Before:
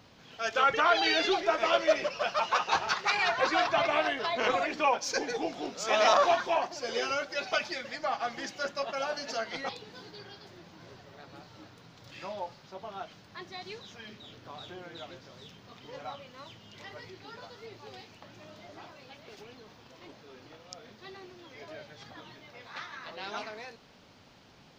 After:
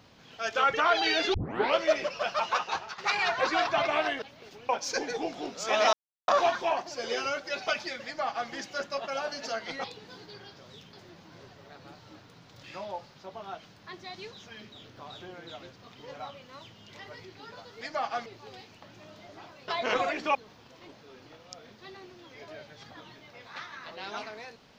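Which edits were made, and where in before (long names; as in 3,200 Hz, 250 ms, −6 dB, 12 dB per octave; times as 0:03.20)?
0:01.34: tape start 0.43 s
0:02.51–0:02.98: fade out, to −16.5 dB
0:04.22–0:04.89: swap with 0:19.08–0:19.55
0:06.13: splice in silence 0.35 s
0:07.90–0:08.35: duplicate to 0:17.66
0:15.24–0:15.61: move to 0:10.41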